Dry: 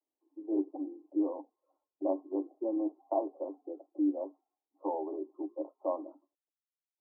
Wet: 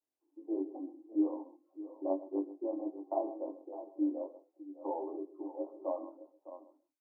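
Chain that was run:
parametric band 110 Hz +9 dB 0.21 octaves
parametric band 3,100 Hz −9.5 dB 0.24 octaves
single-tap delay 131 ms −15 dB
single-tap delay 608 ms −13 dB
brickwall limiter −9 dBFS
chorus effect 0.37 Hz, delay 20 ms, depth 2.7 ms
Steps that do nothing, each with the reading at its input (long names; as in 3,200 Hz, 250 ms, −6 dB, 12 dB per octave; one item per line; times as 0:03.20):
parametric band 110 Hz: nothing at its input below 250 Hz
parametric band 3,100 Hz: nothing at its input above 1,000 Hz
brickwall limiter −9 dBFS: peak of its input −18.0 dBFS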